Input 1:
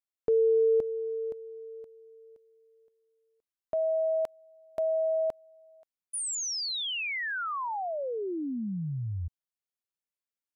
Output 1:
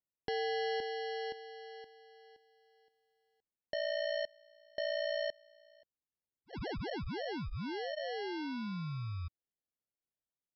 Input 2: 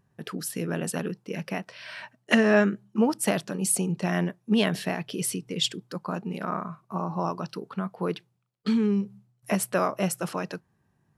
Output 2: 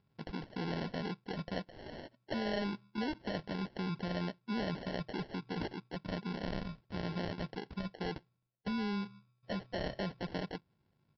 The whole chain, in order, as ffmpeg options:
-af "acompressor=threshold=0.0398:ratio=6:attack=5.2:release=24:knee=1:detection=rms,aresample=11025,acrusher=samples=9:mix=1:aa=0.000001,aresample=44100,volume=0.501"

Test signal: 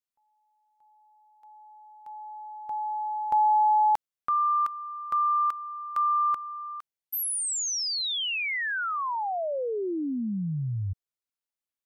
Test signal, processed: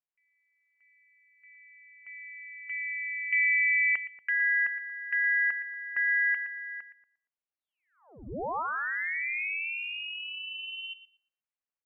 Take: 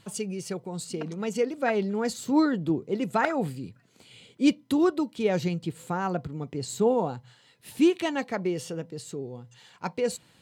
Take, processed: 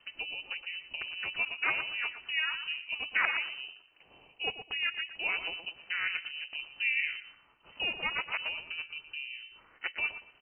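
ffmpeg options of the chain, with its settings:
-filter_complex "[0:a]acrossover=split=520|1100[s0][s1][s2];[s0]acompressor=threshold=0.0158:ratio=6:attack=20:release=110:knee=6[s3];[s3][s1][s2]amix=inputs=3:normalize=0,lowpass=f=2600:t=q:w=0.5098,lowpass=f=2600:t=q:w=0.6013,lowpass=f=2600:t=q:w=0.9,lowpass=f=2600:t=q:w=2.563,afreqshift=-3000,asplit=2[s4][s5];[s5]adelay=117,lowpass=f=1700:p=1,volume=0.398,asplit=2[s6][s7];[s7]adelay=117,lowpass=f=1700:p=1,volume=0.35,asplit=2[s8][s9];[s9]adelay=117,lowpass=f=1700:p=1,volume=0.35,asplit=2[s10][s11];[s11]adelay=117,lowpass=f=1700:p=1,volume=0.35[s12];[s4][s6][s8][s10][s12]amix=inputs=5:normalize=0,aeval=exprs='val(0)*sin(2*PI*160*n/s)':c=same"

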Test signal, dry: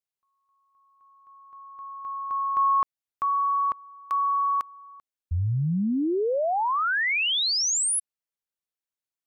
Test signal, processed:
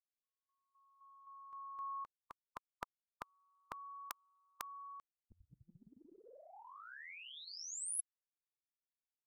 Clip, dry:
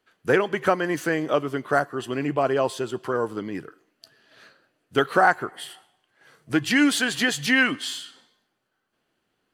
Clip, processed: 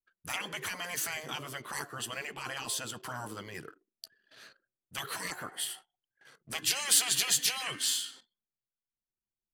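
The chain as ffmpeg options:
-af "afftfilt=real='re*lt(hypot(re,im),0.141)':imag='im*lt(hypot(re,im),0.141)':win_size=1024:overlap=0.75,anlmdn=0.000398,crystalizer=i=3:c=0,volume=0.531"

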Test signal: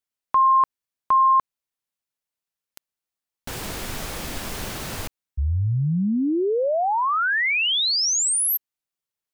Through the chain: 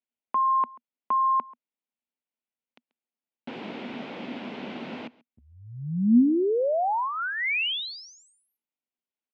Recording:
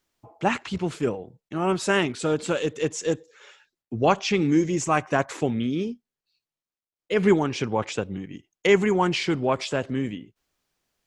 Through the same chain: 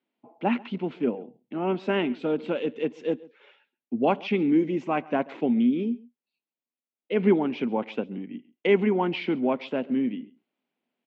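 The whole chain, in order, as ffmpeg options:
-af "highpass=f=190:w=0.5412,highpass=f=190:w=1.3066,equalizer=f=240:t=q:w=4:g=10,equalizer=f=1200:t=q:w=4:g=-7,equalizer=f=1700:t=q:w=4:g=-7,lowpass=f=3000:w=0.5412,lowpass=f=3000:w=1.3066,aecho=1:1:136:0.0708,volume=0.75"

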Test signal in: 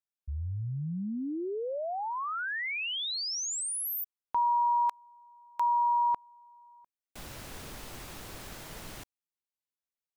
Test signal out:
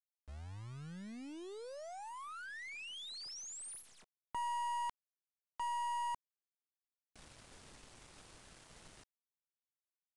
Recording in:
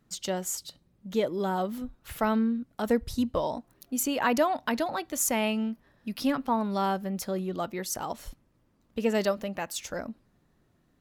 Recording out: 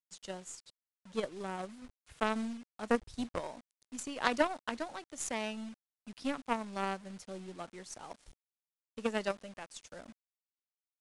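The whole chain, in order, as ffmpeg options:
-filter_complex "[0:a]acrossover=split=360|1300[s0][s1][s2];[s0]acompressor=mode=upward:threshold=0.00251:ratio=2.5:release=380:knee=2.83:detection=peak[s3];[s3][s1][s2]amix=inputs=3:normalize=0,acrusher=bits=6:mix=0:aa=0.000001,aeval=exprs='0.266*(cos(1*acos(clip(val(0)/0.266,-1,1)))-cos(1*PI/2))+0.075*(cos(3*acos(clip(val(0)/0.266,-1,1)))-cos(3*PI/2))+0.00376*(cos(6*acos(clip(val(0)/0.266,-1,1)))-cos(6*PI/2))':c=same,aresample=22050,aresample=44100,volume=1.12"

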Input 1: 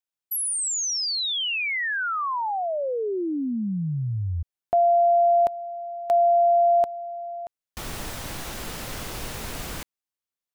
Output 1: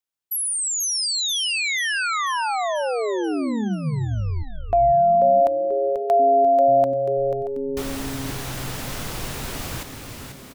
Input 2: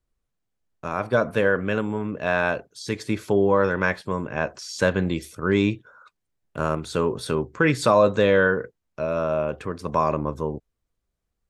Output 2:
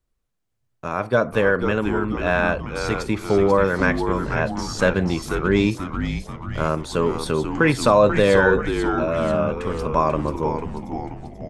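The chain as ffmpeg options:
-filter_complex "[0:a]asplit=8[s0][s1][s2][s3][s4][s5][s6][s7];[s1]adelay=488,afreqshift=-140,volume=0.447[s8];[s2]adelay=976,afreqshift=-280,volume=0.254[s9];[s3]adelay=1464,afreqshift=-420,volume=0.145[s10];[s4]adelay=1952,afreqshift=-560,volume=0.0832[s11];[s5]adelay=2440,afreqshift=-700,volume=0.0473[s12];[s6]adelay=2928,afreqshift=-840,volume=0.0269[s13];[s7]adelay=3416,afreqshift=-980,volume=0.0153[s14];[s0][s8][s9][s10][s11][s12][s13][s14]amix=inputs=8:normalize=0,volume=1.26"

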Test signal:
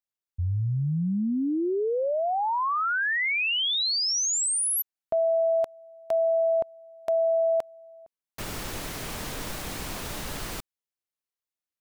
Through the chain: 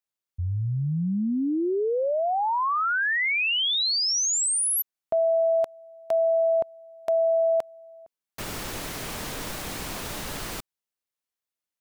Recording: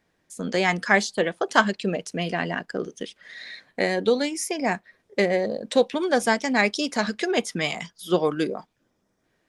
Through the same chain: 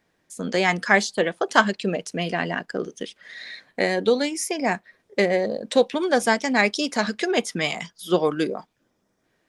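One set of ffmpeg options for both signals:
-af "lowshelf=f=110:g=-4,volume=1.19"

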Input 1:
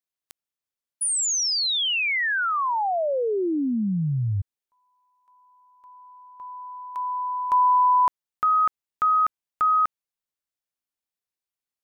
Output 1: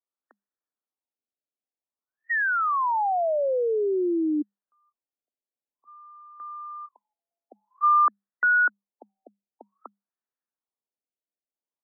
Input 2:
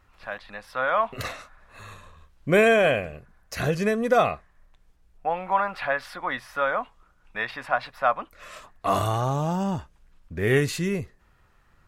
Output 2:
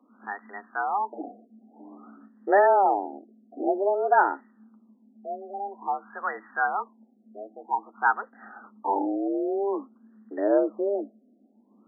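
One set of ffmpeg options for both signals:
-af "afreqshift=200,afftfilt=real='re*lt(b*sr/1024,730*pow(2000/730,0.5+0.5*sin(2*PI*0.51*pts/sr)))':imag='im*lt(b*sr/1024,730*pow(2000/730,0.5+0.5*sin(2*PI*0.51*pts/sr)))':win_size=1024:overlap=0.75"

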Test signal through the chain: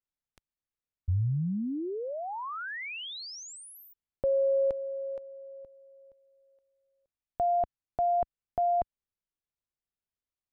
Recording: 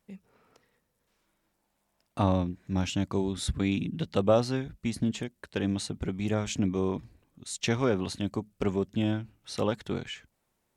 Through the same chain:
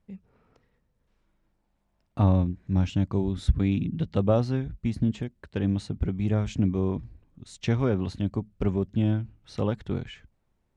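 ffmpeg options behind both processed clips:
-af "aemphasis=mode=reproduction:type=bsi,aeval=exprs='0.473*(cos(1*acos(clip(val(0)/0.473,-1,1)))-cos(1*PI/2))+0.00596*(cos(2*acos(clip(val(0)/0.473,-1,1)))-cos(2*PI/2))':c=same,volume=0.75"

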